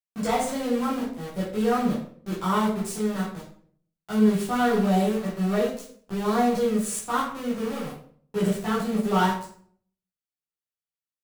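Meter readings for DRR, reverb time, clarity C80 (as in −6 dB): −8.5 dB, 0.55 s, 8.5 dB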